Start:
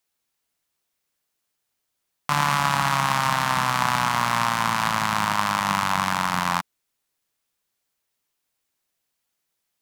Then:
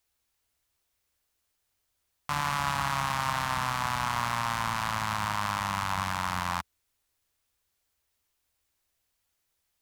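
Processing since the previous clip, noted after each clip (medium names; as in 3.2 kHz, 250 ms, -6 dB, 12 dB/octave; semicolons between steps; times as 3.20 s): resonant low shelf 110 Hz +10 dB, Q 1.5; peak limiter -15 dBFS, peak gain reduction 10.5 dB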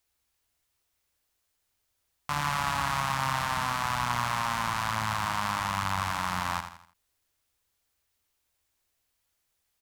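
on a send: feedback delay 82 ms, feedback 40%, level -9 dB; on the sum: endings held to a fixed fall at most 260 dB/s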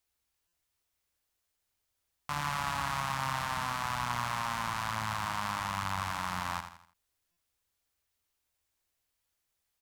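buffer glitch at 0.47/7.31 s, samples 256, times 9; trim -4.5 dB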